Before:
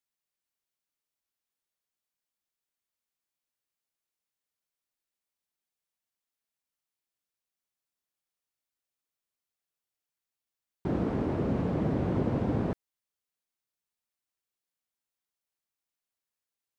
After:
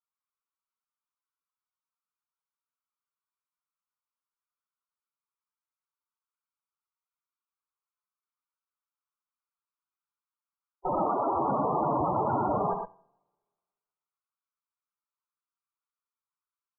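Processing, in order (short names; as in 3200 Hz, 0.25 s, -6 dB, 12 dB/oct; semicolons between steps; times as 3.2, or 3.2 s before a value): minimum comb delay 0.82 ms; three-band isolator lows -20 dB, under 480 Hz, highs -15 dB, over 2200 Hz; in parallel at +1.5 dB: limiter -38 dBFS, peak gain reduction 10.5 dB; on the sum: sample leveller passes 3; loudest bins only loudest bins 16; air absorption 410 m; on a send: tapped delay 75/119 ms -10.5/-6.5 dB; on the sum: two-slope reverb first 0.65 s, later 1.7 s, from -20 dB, DRR 19.5 dB; ending taper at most 530 dB/s; gain +6 dB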